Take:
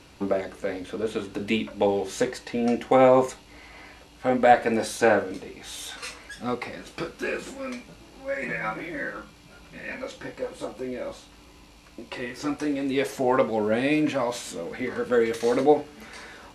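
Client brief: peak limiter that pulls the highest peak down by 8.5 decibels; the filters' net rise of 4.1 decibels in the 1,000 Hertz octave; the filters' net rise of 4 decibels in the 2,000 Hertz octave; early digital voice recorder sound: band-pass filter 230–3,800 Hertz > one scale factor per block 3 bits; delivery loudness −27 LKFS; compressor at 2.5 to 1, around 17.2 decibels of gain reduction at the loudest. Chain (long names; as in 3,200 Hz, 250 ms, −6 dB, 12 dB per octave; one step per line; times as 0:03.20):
parametric band 1,000 Hz +5.5 dB
parametric band 2,000 Hz +3.5 dB
downward compressor 2.5 to 1, threshold −35 dBFS
brickwall limiter −25 dBFS
band-pass filter 230–3,800 Hz
one scale factor per block 3 bits
level +10.5 dB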